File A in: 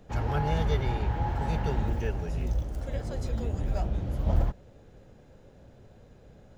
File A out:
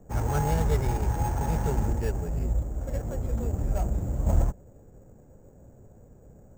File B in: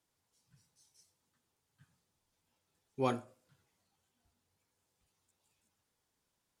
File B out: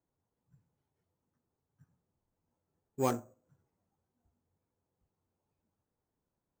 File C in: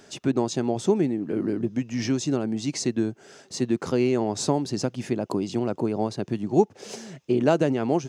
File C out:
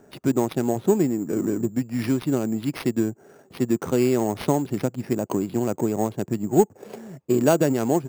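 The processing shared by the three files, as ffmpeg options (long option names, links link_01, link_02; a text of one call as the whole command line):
ffmpeg -i in.wav -af "adynamicsmooth=sensitivity=5:basefreq=1000,acrusher=samples=6:mix=1:aa=0.000001,volume=2dB" out.wav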